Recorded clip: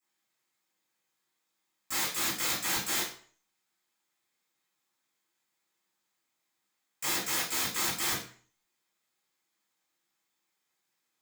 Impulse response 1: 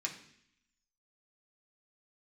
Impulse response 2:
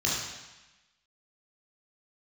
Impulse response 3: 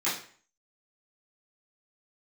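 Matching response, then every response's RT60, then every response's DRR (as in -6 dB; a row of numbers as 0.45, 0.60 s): 3; 0.65, 1.0, 0.45 s; -1.5, -5.5, -12.5 dB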